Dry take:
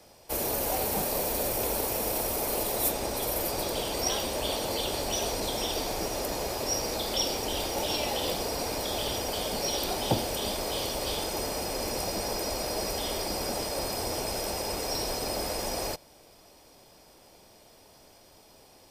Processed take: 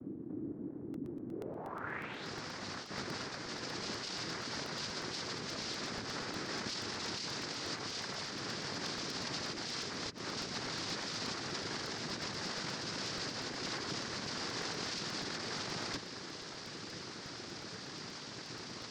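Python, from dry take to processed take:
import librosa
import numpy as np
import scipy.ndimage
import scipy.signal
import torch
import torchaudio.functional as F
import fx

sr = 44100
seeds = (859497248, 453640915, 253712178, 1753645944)

y = fx.peak_eq(x, sr, hz=160.0, db=12.5, octaves=1.1)
y = fx.over_compress(y, sr, threshold_db=-39.0, ratio=-1.0)
y = fx.noise_vocoder(y, sr, seeds[0], bands=3)
y = fx.filter_sweep_lowpass(y, sr, from_hz=300.0, to_hz=4900.0, start_s=1.29, end_s=2.29, q=3.4)
y = fx.buffer_crackle(y, sr, first_s=0.94, period_s=0.12, block=64, kind='repeat')
y = y * 10.0 ** (-3.0 / 20.0)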